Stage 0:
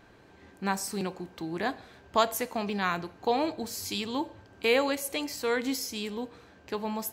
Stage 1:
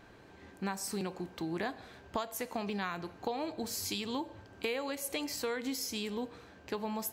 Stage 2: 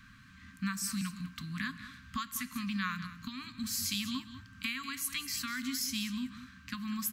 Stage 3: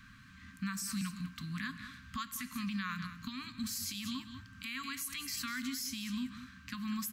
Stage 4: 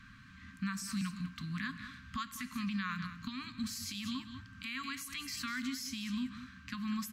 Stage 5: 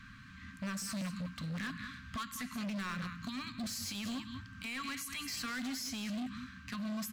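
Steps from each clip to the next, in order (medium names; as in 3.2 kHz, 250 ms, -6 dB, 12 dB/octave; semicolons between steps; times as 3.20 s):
compression 10:1, threshold -32 dBFS, peak gain reduction 15 dB
Chebyshev band-stop 260–1100 Hz, order 5; delay 196 ms -13 dB; trim +3.5 dB
peak limiter -29.5 dBFS, peak gain reduction 10.5 dB
treble shelf 9 kHz -12 dB; trim +1 dB
hard clipper -38.5 dBFS, distortion -9 dB; trim +2.5 dB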